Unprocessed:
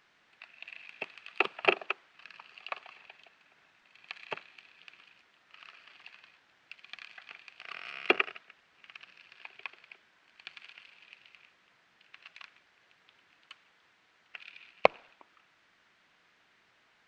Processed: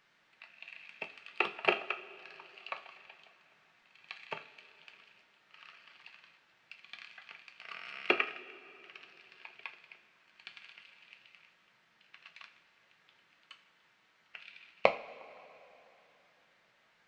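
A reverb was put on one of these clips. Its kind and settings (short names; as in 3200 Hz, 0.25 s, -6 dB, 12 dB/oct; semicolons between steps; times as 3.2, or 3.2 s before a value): two-slope reverb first 0.3 s, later 3.3 s, from -20 dB, DRR 5 dB; gain -3.5 dB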